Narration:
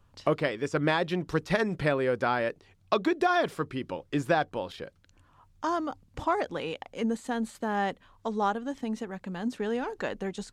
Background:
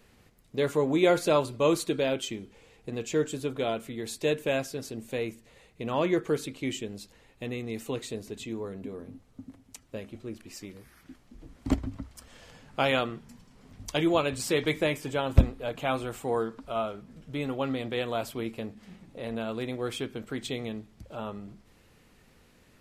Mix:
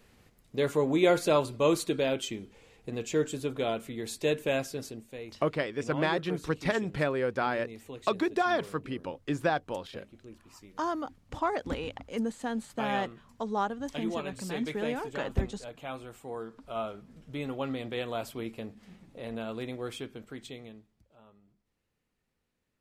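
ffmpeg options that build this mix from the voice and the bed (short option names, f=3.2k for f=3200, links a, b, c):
-filter_complex "[0:a]adelay=5150,volume=-2.5dB[a];[1:a]volume=6dB,afade=t=out:st=4.83:d=0.24:silence=0.334965,afade=t=in:st=16.39:d=0.45:silence=0.446684,afade=t=out:st=19.65:d=1.46:silence=0.11885[b];[a][b]amix=inputs=2:normalize=0"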